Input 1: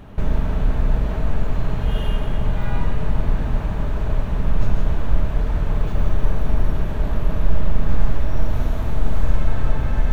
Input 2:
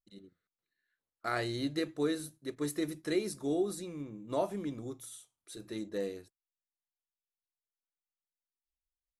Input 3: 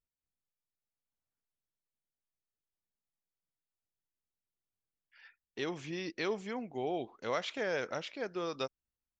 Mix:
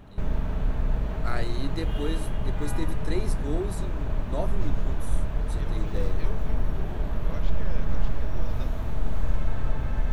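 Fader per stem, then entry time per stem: -7.0 dB, -0.5 dB, -10.5 dB; 0.00 s, 0.00 s, 0.00 s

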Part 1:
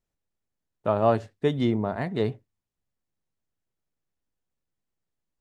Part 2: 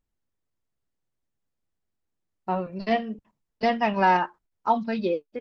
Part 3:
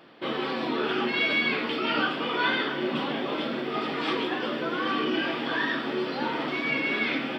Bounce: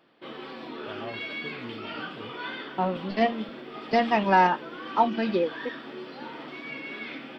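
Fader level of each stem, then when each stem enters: -18.5 dB, +0.5 dB, -10.5 dB; 0.00 s, 0.30 s, 0.00 s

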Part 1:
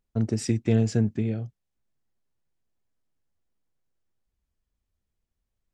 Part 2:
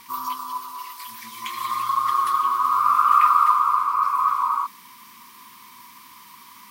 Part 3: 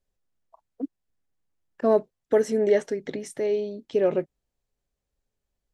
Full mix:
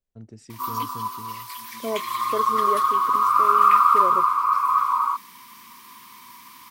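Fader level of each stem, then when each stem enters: -17.5 dB, +0.5 dB, -8.0 dB; 0.00 s, 0.50 s, 0.00 s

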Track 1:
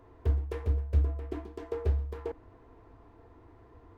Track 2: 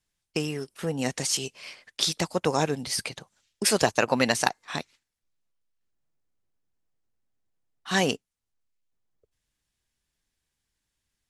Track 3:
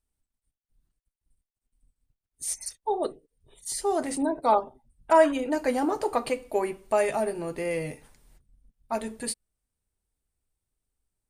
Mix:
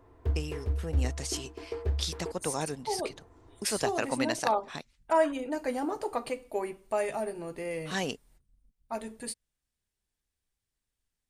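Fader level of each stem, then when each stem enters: -2.0 dB, -8.5 dB, -6.0 dB; 0.00 s, 0.00 s, 0.00 s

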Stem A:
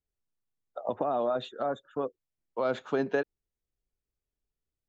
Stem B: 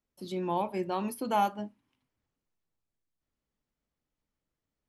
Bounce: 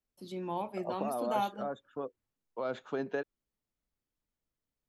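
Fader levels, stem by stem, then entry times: -6.5 dB, -5.5 dB; 0.00 s, 0.00 s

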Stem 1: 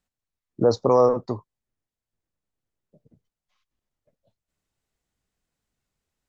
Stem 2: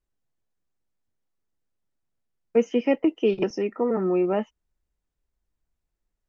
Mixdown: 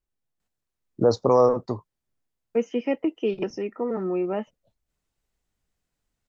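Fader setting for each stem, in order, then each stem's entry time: -0.5 dB, -3.5 dB; 0.40 s, 0.00 s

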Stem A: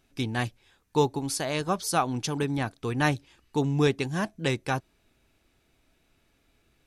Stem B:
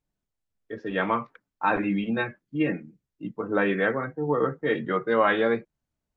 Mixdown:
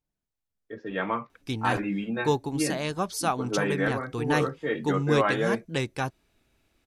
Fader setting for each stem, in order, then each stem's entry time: -1.5 dB, -3.5 dB; 1.30 s, 0.00 s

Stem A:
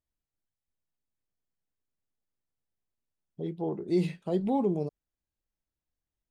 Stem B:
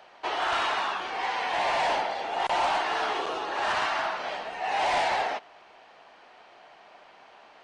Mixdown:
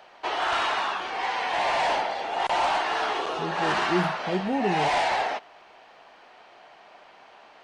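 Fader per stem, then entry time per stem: +0.5 dB, +1.5 dB; 0.00 s, 0.00 s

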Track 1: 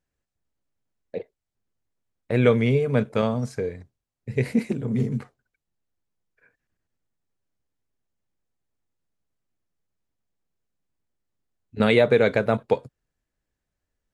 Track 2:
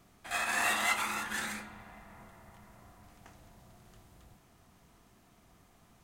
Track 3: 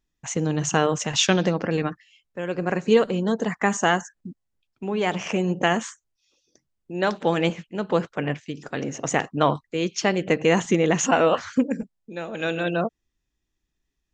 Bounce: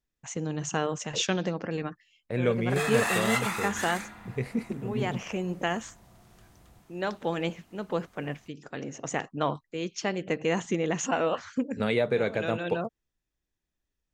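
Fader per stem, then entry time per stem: -8.0 dB, +1.5 dB, -8.0 dB; 0.00 s, 2.45 s, 0.00 s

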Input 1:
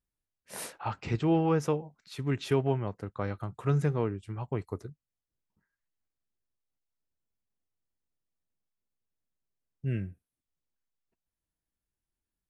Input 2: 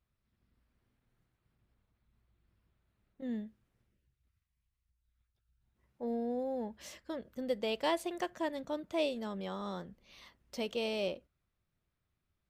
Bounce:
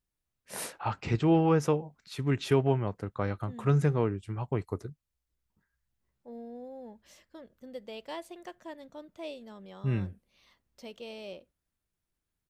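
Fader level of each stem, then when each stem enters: +2.0 dB, -8.0 dB; 0.00 s, 0.25 s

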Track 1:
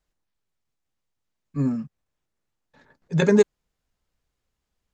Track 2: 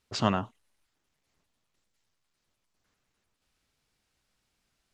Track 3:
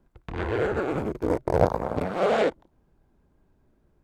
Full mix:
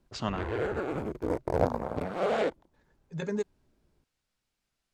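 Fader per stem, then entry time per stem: -15.0 dB, -6.5 dB, -5.5 dB; 0.00 s, 0.00 s, 0.00 s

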